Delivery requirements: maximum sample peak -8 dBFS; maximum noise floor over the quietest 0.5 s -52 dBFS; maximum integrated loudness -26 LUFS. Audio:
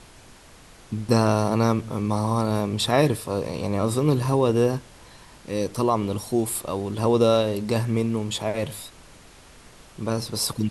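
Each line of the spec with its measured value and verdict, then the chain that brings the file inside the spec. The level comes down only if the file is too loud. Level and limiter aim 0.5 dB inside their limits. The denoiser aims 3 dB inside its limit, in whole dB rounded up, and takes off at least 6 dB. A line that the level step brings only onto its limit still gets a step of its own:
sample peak -5.5 dBFS: fail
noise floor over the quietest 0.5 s -49 dBFS: fail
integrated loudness -24.0 LUFS: fail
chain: denoiser 6 dB, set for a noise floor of -49 dBFS; gain -2.5 dB; limiter -8.5 dBFS

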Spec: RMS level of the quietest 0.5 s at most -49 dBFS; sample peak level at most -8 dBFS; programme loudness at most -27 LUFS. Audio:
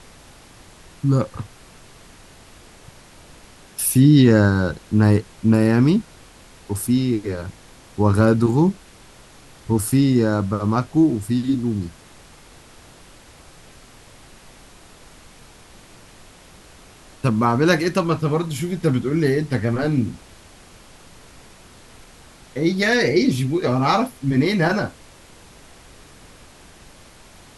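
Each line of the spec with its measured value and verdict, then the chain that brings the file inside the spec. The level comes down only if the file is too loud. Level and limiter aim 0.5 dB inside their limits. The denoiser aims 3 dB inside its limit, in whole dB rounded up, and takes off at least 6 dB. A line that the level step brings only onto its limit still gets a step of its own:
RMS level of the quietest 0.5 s -46 dBFS: fail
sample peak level -2.5 dBFS: fail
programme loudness -19.0 LUFS: fail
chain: gain -8.5 dB

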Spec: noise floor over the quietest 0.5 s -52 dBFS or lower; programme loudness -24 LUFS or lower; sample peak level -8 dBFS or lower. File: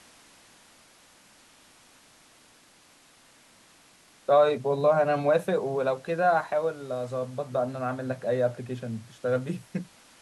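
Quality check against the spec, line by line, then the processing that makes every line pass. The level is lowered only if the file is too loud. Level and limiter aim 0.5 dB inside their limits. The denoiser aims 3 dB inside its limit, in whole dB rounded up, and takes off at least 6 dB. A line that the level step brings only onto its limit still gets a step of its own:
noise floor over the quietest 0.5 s -58 dBFS: OK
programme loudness -27.0 LUFS: OK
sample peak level -10.5 dBFS: OK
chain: none

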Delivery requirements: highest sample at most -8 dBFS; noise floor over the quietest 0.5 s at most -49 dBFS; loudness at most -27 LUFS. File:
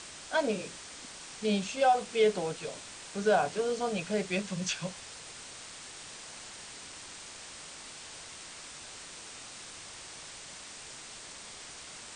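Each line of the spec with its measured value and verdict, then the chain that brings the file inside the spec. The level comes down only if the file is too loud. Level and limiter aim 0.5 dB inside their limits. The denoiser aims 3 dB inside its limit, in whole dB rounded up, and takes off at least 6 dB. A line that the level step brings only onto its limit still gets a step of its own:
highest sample -15.0 dBFS: OK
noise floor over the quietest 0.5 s -47 dBFS: fail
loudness -34.5 LUFS: OK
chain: denoiser 6 dB, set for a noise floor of -47 dBFS

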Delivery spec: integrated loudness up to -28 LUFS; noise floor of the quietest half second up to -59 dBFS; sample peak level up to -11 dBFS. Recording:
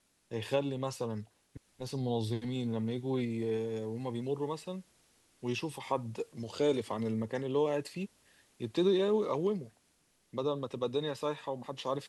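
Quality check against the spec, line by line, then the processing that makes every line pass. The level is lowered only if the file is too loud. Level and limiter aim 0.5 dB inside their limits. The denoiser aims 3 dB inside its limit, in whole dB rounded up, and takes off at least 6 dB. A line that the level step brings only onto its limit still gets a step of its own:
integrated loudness -34.5 LUFS: OK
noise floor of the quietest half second -72 dBFS: OK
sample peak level -16.5 dBFS: OK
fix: none

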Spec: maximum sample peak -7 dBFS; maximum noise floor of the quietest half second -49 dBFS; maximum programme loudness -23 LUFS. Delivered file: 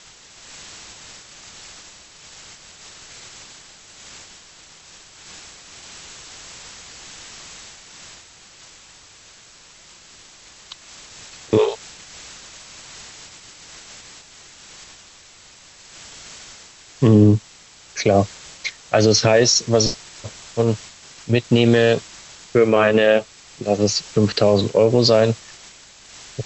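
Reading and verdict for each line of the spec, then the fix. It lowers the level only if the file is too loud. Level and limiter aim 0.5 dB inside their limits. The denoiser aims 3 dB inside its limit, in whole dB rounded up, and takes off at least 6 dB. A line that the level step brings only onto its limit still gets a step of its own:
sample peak -4.0 dBFS: fail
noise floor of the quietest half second -47 dBFS: fail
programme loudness -17.5 LUFS: fail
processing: gain -6 dB

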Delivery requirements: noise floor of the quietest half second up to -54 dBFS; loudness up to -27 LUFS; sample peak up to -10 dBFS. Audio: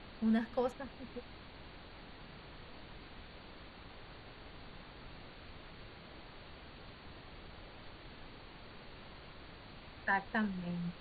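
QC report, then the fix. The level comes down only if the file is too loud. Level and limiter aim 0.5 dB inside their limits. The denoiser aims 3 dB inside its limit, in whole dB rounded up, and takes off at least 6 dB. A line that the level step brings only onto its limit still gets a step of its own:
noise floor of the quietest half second -53 dBFS: fail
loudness -43.5 LUFS: OK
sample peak -21.0 dBFS: OK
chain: denoiser 6 dB, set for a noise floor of -53 dBFS

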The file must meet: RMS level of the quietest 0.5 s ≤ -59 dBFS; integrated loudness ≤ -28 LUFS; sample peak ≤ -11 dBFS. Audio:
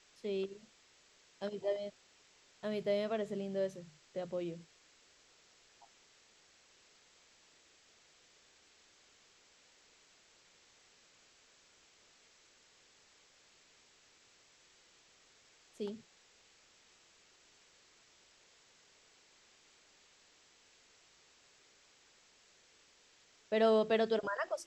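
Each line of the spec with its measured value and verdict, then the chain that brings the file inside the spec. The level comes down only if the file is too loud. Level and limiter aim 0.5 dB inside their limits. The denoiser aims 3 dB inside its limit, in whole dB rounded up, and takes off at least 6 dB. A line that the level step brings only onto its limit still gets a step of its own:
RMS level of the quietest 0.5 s -67 dBFS: OK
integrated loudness -36.5 LUFS: OK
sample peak -19.5 dBFS: OK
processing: none

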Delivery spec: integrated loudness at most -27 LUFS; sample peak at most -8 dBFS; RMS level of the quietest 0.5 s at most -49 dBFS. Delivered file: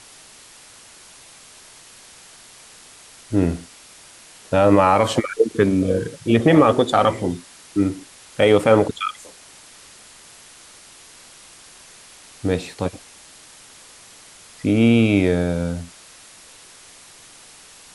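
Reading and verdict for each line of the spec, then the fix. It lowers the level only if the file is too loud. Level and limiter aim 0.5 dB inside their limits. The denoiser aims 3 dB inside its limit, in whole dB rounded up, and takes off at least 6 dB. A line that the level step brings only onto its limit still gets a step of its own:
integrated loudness -19.0 LUFS: fail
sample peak -3.5 dBFS: fail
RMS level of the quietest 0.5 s -46 dBFS: fail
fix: gain -8.5 dB

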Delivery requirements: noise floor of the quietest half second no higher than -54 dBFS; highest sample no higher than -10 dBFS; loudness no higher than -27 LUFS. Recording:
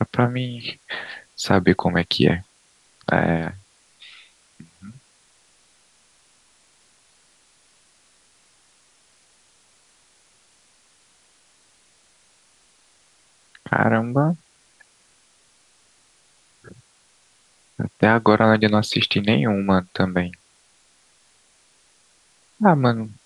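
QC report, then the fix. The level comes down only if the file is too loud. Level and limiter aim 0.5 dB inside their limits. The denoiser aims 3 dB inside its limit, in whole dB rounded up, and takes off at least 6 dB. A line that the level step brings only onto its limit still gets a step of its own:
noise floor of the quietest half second -59 dBFS: OK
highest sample -1.5 dBFS: fail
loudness -20.5 LUFS: fail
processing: gain -7 dB; limiter -10.5 dBFS

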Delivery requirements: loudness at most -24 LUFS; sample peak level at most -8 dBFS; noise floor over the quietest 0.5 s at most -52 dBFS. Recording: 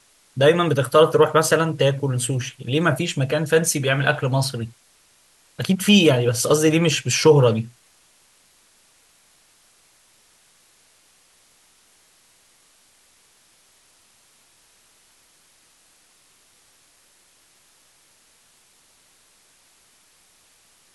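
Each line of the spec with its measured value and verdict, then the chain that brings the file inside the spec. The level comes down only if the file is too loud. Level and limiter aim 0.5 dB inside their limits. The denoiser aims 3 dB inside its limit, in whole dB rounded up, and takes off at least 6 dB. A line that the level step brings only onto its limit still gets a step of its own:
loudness -18.5 LUFS: fail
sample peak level -4.0 dBFS: fail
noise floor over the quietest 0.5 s -58 dBFS: OK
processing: gain -6 dB

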